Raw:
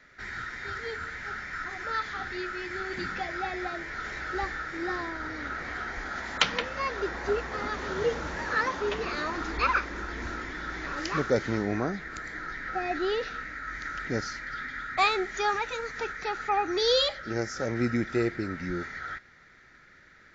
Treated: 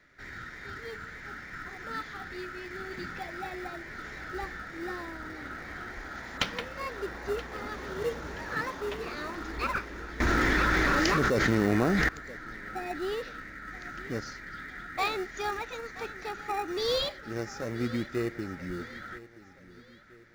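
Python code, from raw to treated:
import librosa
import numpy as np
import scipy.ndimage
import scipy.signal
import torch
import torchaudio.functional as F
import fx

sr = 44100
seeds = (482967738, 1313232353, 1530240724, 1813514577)

p1 = fx.sample_hold(x, sr, seeds[0], rate_hz=1600.0, jitter_pct=0)
p2 = x + (p1 * librosa.db_to_amplitude(-10.0))
p3 = fx.echo_feedback(p2, sr, ms=976, feedback_pct=42, wet_db=-18)
p4 = fx.env_flatten(p3, sr, amount_pct=100, at=(10.2, 12.09))
y = p4 * librosa.db_to_amplitude(-6.0)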